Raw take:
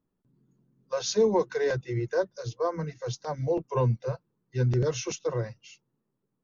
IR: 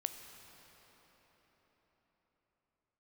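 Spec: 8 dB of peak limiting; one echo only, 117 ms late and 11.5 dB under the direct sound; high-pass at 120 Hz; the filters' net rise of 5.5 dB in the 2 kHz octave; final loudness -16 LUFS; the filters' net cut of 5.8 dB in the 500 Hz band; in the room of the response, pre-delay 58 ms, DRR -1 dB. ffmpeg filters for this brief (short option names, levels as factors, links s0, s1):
-filter_complex "[0:a]highpass=120,equalizer=f=500:t=o:g=-7,equalizer=f=2000:t=o:g=8,alimiter=limit=0.0668:level=0:latency=1,aecho=1:1:117:0.266,asplit=2[s0][s1];[1:a]atrim=start_sample=2205,adelay=58[s2];[s1][s2]afir=irnorm=-1:irlink=0,volume=1.12[s3];[s0][s3]amix=inputs=2:normalize=0,volume=5.62"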